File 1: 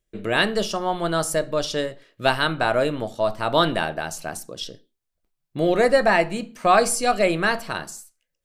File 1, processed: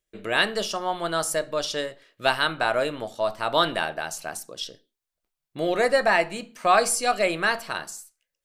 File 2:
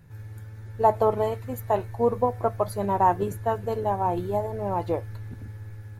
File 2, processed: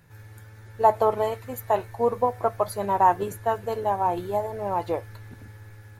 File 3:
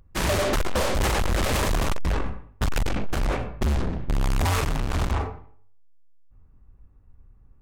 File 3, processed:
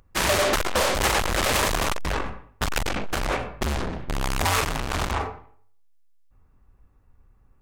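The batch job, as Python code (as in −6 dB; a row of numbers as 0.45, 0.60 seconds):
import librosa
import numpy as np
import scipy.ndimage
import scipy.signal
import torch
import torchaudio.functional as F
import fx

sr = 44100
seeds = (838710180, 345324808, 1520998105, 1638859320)

y = fx.low_shelf(x, sr, hz=370.0, db=-10.5)
y = y * 10.0 ** (-26 / 20.0) / np.sqrt(np.mean(np.square(y)))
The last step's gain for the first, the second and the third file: −0.5, +3.5, +5.0 decibels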